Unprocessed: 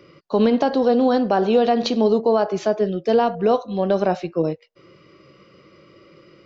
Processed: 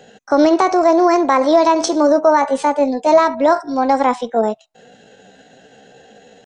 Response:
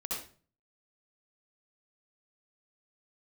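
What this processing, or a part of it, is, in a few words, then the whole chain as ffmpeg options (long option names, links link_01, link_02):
chipmunk voice: -filter_complex "[0:a]asettb=1/sr,asplit=3[link_01][link_02][link_03];[link_01]atrim=end=1.744[link_04];[link_02]atrim=start=1.74:end=3.43,asetpts=PTS-STARTPTS,afade=type=in:duration=0.004:curve=qsin,afade=type=out:start_time=1.686:duration=0.004:curve=qsin,asplit=2[link_05][link_06];[link_06]adelay=15,volume=-9.5dB[link_07];[link_05][link_07]amix=inputs=2:normalize=0,atrim=end_sample=74529[link_08];[link_03]atrim=start=3.426[link_09];[link_04][link_08]acrossfade=duration=0.004:curve1=hsin:curve2=qsin[link_10];[link_10][link_09]acrossfade=duration=0.004:curve1=qsin:curve2=hsin,asetrate=60591,aresample=44100,atempo=0.727827,volume=4.5dB"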